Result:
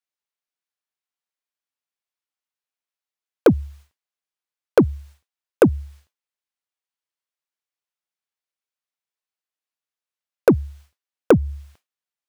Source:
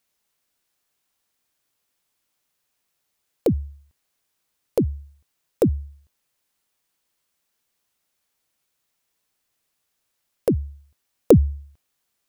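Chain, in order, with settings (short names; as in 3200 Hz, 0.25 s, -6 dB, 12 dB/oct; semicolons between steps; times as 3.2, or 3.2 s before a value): expander -43 dBFS; compressor 10:1, threshold -18 dBFS, peak gain reduction 10.5 dB; overdrive pedal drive 24 dB, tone 4100 Hz, clips at -2 dBFS; gain +1.5 dB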